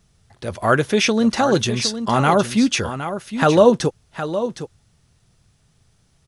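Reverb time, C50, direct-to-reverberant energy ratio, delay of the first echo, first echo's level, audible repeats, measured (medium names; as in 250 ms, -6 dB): no reverb, no reverb, no reverb, 763 ms, -10.5 dB, 1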